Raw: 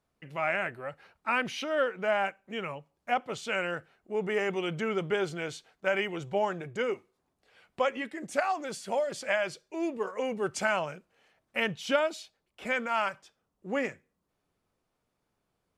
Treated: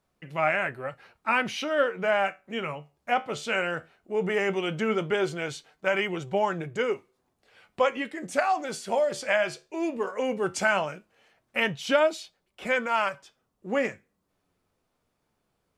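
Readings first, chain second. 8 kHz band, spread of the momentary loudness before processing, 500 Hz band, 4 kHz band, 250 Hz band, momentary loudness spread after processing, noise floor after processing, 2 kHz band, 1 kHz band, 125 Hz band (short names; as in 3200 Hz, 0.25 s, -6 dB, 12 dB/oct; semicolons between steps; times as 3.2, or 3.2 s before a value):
+3.5 dB, 11 LU, +4.0 dB, +3.5 dB, +3.5 dB, 11 LU, -77 dBFS, +4.0 dB, +4.0 dB, +4.0 dB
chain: flange 0.16 Hz, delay 5.1 ms, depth 9.3 ms, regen +71%; gain +8 dB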